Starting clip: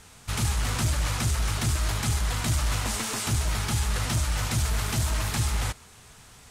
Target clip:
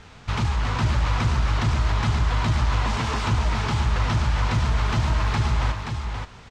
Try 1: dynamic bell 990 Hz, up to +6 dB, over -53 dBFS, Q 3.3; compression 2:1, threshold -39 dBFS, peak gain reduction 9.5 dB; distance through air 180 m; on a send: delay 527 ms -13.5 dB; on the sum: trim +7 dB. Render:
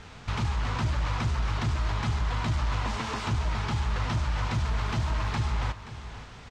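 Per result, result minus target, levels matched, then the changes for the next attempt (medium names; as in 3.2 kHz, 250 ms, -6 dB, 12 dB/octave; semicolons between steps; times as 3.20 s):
echo-to-direct -8 dB; compression: peak gain reduction +5 dB
change: delay 527 ms -5.5 dB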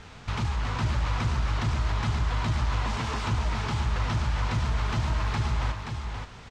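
compression: peak gain reduction +5 dB
change: compression 2:1, threshold -29 dBFS, peak gain reduction 4.5 dB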